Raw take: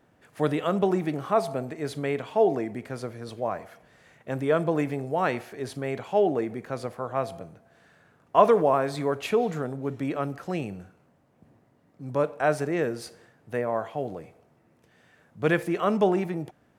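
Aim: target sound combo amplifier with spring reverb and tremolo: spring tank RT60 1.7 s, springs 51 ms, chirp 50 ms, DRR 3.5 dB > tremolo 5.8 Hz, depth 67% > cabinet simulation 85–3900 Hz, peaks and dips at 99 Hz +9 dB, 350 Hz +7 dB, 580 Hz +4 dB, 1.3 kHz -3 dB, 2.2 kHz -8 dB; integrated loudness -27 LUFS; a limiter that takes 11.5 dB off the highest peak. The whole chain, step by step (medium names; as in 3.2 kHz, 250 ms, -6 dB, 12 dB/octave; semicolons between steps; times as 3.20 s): peak limiter -15.5 dBFS; spring tank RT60 1.7 s, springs 51 ms, chirp 50 ms, DRR 3.5 dB; tremolo 5.8 Hz, depth 67%; cabinet simulation 85–3900 Hz, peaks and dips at 99 Hz +9 dB, 350 Hz +7 dB, 580 Hz +4 dB, 1.3 kHz -3 dB, 2.2 kHz -8 dB; trim +1 dB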